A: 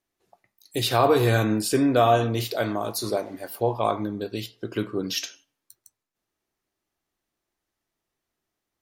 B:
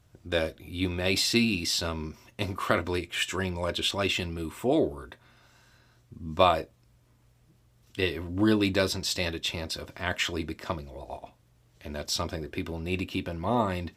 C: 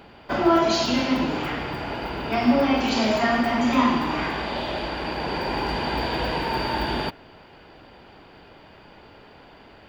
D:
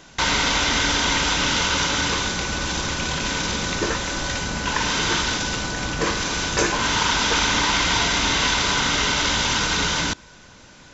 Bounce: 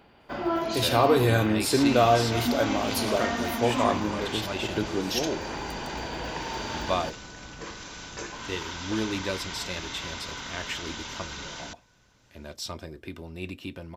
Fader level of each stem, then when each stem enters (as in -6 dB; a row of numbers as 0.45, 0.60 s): -1.5, -6.0, -9.0, -17.0 dB; 0.00, 0.50, 0.00, 1.60 s